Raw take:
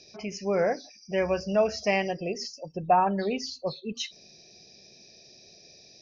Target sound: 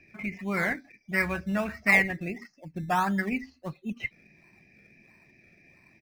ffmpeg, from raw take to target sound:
ffmpeg -i in.wav -filter_complex "[0:a]firequalizer=gain_entry='entry(310,0);entry(440,-16);entry(1200,2);entry(2100,14);entry(3500,-26)':delay=0.05:min_phase=1,asplit=2[link_01][link_02];[link_02]acrusher=samples=18:mix=1:aa=0.000001:lfo=1:lforange=10.8:lforate=1.5,volume=-11dB[link_03];[link_01][link_03]amix=inputs=2:normalize=0" out.wav

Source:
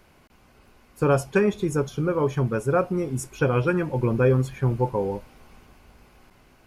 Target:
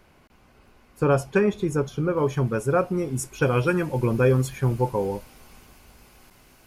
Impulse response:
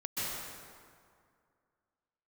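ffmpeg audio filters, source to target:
-af "asetnsamples=nb_out_samples=441:pad=0,asendcmd='2.17 highshelf g 4;3.42 highshelf g 11.5',highshelf=frequency=4300:gain=-3"

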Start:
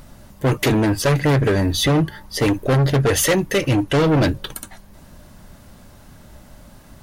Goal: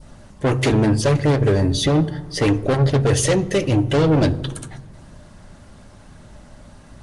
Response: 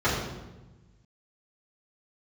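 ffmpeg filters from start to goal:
-filter_complex "[0:a]asplit=2[link_01][link_02];[1:a]atrim=start_sample=2205[link_03];[link_02][link_03]afir=irnorm=-1:irlink=0,volume=-28.5dB[link_04];[link_01][link_04]amix=inputs=2:normalize=0,adynamicequalizer=threshold=0.0158:dfrequency=1800:dqfactor=0.8:tfrequency=1800:tqfactor=0.8:attack=5:release=100:ratio=0.375:range=3.5:mode=cutabove:tftype=bell" -ar 22050 -c:a nellymoser

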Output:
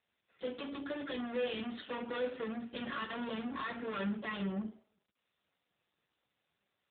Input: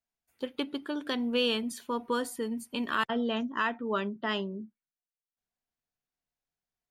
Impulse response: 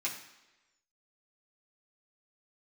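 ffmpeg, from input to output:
-filter_complex "[0:a]asplit=3[link_01][link_02][link_03];[link_01]afade=type=out:start_time=1.81:duration=0.02[link_04];[link_02]bandreject=frequency=130.4:width_type=h:width=4,bandreject=frequency=260.8:width_type=h:width=4,bandreject=frequency=391.2:width_type=h:width=4,bandreject=frequency=521.6:width_type=h:width=4,afade=type=in:start_time=1.81:duration=0.02,afade=type=out:start_time=2.51:duration=0.02[link_05];[link_03]afade=type=in:start_time=2.51:duration=0.02[link_06];[link_04][link_05][link_06]amix=inputs=3:normalize=0,asettb=1/sr,asplit=3[link_07][link_08][link_09];[link_07]atrim=end=3.384[link_10];[link_08]atrim=start=3.38:end=3.82,asetpts=PTS-STARTPTS,afade=type=in:duration=0.004:curve=qsin,afade=type=out:start_time=0.436:duration=0.004:curve=qsin,asubboost=boost=11:cutoff=140[link_11];[link_09]atrim=start=3.816[link_12];[link_10][link_11]acrossfade=duration=0.004:curve1=hsin:curve2=qsin[link_13];[link_13][link_12]acrossfade=duration=0.004:curve1=qsin:curve2=hsin,aeval=exprs='(tanh(200*val(0)+0.4)-tanh(0.4))/200':channel_layout=same[link_14];[1:a]atrim=start_sample=2205,asetrate=74970,aresample=44100[link_15];[link_14][link_15]afir=irnorm=-1:irlink=0,volume=14dB" -ar 8000 -c:a libopencore_amrnb -b:a 7400

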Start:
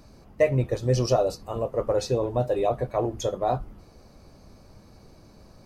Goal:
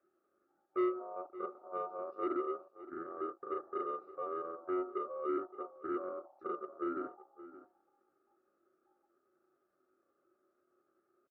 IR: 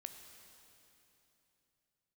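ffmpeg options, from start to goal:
-filter_complex "[0:a]afwtdn=0.0316,acrossover=split=470 2700:gain=0.158 1 0.224[link_01][link_02][link_03];[link_01][link_02][link_03]amix=inputs=3:normalize=0,acrossover=split=290[link_04][link_05];[link_05]acompressor=threshold=-46dB:ratio=2.5[link_06];[link_04][link_06]amix=inputs=2:normalize=0,aeval=exprs='val(0)*sin(2*PI*1100*n/s)':channel_layout=same,asetrate=66075,aresample=44100,atempo=0.66742,asplit=3[link_07][link_08][link_09];[link_07]bandpass=frequency=730:width_type=q:width=8,volume=0dB[link_10];[link_08]bandpass=frequency=1090:width_type=q:width=8,volume=-6dB[link_11];[link_09]bandpass=frequency=2440:width_type=q:width=8,volume=-9dB[link_12];[link_10][link_11][link_12]amix=inputs=3:normalize=0,asoftclip=type=tanh:threshold=-37.5dB,asplit=2[link_13][link_14];[link_14]adelay=285.7,volume=-15dB,highshelf=frequency=4000:gain=-6.43[link_15];[link_13][link_15]amix=inputs=2:normalize=0,asetrate=22050,aresample=44100,asuperstop=centerf=3200:order=20:qfactor=5.4,volume=12.5dB" -ar 48000 -c:a libopus -b:a 64k

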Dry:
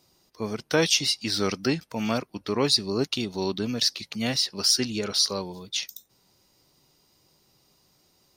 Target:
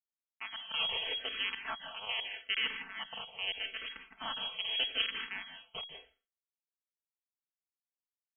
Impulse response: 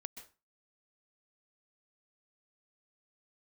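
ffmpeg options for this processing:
-filter_complex "[0:a]aeval=exprs='if(lt(val(0),0),0.447*val(0),val(0))':channel_layout=same,asettb=1/sr,asplit=3[link_01][link_02][link_03];[link_01]atrim=end=1.674[link_04];[link_02]atrim=start=1.67:end=3.85,asetpts=PTS-STARTPTS,afade=type=in:duration=0.004:curve=qsin,afade=type=out:start_time=2.176:duration=0.004:curve=qsin,highpass=frequency=270:poles=1[link_05];[link_03]atrim=start=3.846[link_06];[link_04][link_05]acrossfade=duration=0.004:curve1=hsin:curve2=qsin[link_07];[link_07][link_06]acrossfade=duration=0.004:curve1=qsin:curve2=hsin,alimiter=limit=-17dB:level=0:latency=1:release=42,acrusher=bits=3:mix=0:aa=0.5,agate=range=-10dB:threshold=-49dB:ratio=16:detection=peak,aecho=1:1:4.6:1,lowpass=frequency=2800:width_type=q:width=0.5098,lowpass=frequency=2800:width_type=q:width=0.6013,lowpass=frequency=2800:width_type=q:width=0.9,lowpass=frequency=2800:width_type=q:width=2.563,afreqshift=-3300[link_08];[1:a]atrim=start_sample=2205,asetrate=36162,aresample=44100[link_09];[link_08][link_09]afir=irnorm=-1:irlink=0,asplit=2[link_10][link_11];[link_11]afreqshift=-0.81[link_12];[link_10][link_12]amix=inputs=2:normalize=1"

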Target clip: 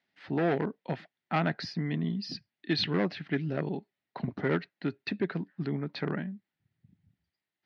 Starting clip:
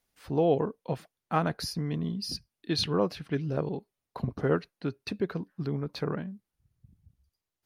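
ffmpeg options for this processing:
ffmpeg -i in.wav -af "volume=21.5dB,asoftclip=hard,volume=-21.5dB,highpass=frequency=120:width=0.5412,highpass=frequency=120:width=1.3066,equalizer=frequency=130:width_type=q:width=4:gain=-5,equalizer=frequency=480:width_type=q:width=4:gain=-8,equalizer=frequency=1100:width_type=q:width=4:gain=-7,equalizer=frequency=1900:width_type=q:width=4:gain=8,lowpass=frequency=4200:width=0.5412,lowpass=frequency=4200:width=1.3066,volume=2dB" out.wav

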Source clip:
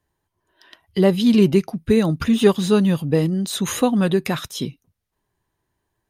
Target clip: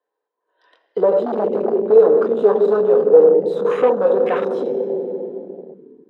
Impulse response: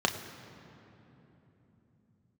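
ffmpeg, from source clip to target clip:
-filter_complex "[1:a]atrim=start_sample=2205,asetrate=57330,aresample=44100[link_01];[0:a][link_01]afir=irnorm=-1:irlink=0,acontrast=51,asplit=2[link_02][link_03];[link_03]highpass=frequency=720:poles=1,volume=19dB,asoftclip=type=tanh:threshold=0dB[link_04];[link_02][link_04]amix=inputs=2:normalize=0,lowpass=frequency=1300:poles=1,volume=-6dB,afwtdn=0.158,highpass=frequency=460:width_type=q:width=4.9,volume=-13.5dB"

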